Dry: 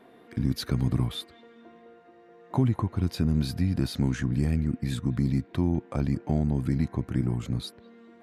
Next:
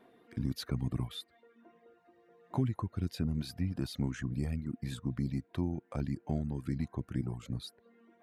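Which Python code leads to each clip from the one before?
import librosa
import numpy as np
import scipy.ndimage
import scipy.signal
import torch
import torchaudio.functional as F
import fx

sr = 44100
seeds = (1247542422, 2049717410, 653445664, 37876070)

y = fx.dereverb_blind(x, sr, rt60_s=0.89)
y = y * librosa.db_to_amplitude(-7.0)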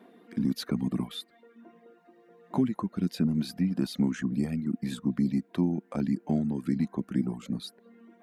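y = fx.low_shelf_res(x, sr, hz=140.0, db=-11.0, q=3.0)
y = y * librosa.db_to_amplitude(4.5)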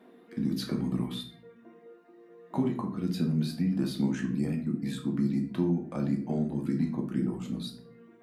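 y = fx.room_shoebox(x, sr, seeds[0], volume_m3=60.0, walls='mixed', distance_m=0.6)
y = y * librosa.db_to_amplitude(-3.0)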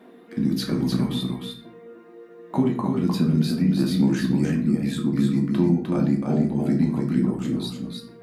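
y = x + 10.0 ** (-4.5 / 20.0) * np.pad(x, (int(304 * sr / 1000.0), 0))[:len(x)]
y = y * librosa.db_to_amplitude(7.0)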